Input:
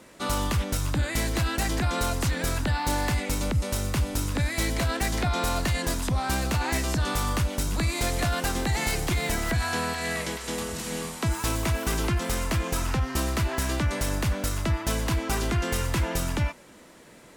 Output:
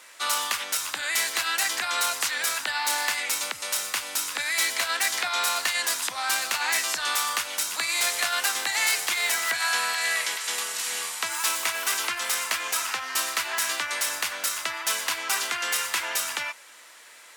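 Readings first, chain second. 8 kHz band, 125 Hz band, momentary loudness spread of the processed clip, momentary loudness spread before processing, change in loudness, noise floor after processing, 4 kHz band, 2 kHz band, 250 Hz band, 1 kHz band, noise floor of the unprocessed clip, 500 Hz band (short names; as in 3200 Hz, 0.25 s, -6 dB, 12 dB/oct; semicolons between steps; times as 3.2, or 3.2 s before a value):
+7.0 dB, under -35 dB, 4 LU, 2 LU, +2.0 dB, -49 dBFS, +7.0 dB, +6.0 dB, -20.5 dB, +1.0 dB, -50 dBFS, -8.0 dB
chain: HPF 1300 Hz 12 dB/oct; gain +7 dB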